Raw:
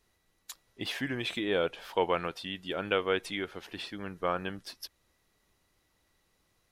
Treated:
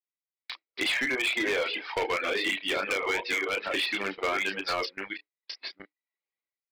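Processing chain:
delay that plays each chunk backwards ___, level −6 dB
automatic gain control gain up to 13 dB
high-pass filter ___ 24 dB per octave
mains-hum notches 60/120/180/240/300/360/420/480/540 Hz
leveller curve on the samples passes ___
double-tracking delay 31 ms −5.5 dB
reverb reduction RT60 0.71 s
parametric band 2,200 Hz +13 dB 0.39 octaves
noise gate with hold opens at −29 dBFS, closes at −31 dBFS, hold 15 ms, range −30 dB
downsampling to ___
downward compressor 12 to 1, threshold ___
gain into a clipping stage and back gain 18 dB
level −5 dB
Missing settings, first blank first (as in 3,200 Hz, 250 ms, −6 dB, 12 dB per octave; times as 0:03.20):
647 ms, 300 Hz, 1, 11,025 Hz, −17 dBFS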